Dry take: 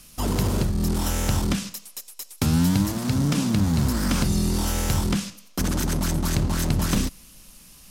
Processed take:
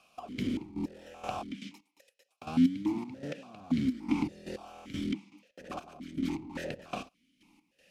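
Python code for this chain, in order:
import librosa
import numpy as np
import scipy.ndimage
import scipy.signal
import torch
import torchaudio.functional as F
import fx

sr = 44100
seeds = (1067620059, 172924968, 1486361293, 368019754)

y = fx.step_gate(x, sr, bpm=158, pattern='xx..xx..x....', floor_db=-12.0, edge_ms=4.5)
y = fx.vowel_held(y, sr, hz=3.5)
y = y * librosa.db_to_amplitude(5.5)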